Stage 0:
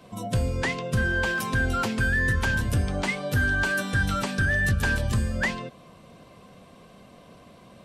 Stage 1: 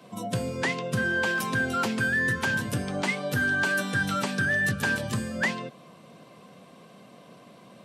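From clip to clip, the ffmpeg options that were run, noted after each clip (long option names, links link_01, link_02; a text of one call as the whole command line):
ffmpeg -i in.wav -af "highpass=frequency=130:width=0.5412,highpass=frequency=130:width=1.3066" out.wav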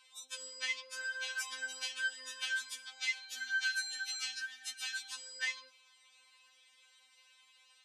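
ffmpeg -i in.wav -af "asuperpass=centerf=4700:order=4:qfactor=0.78,afftfilt=real='re*3.46*eq(mod(b,12),0)':imag='im*3.46*eq(mod(b,12),0)':win_size=2048:overlap=0.75" out.wav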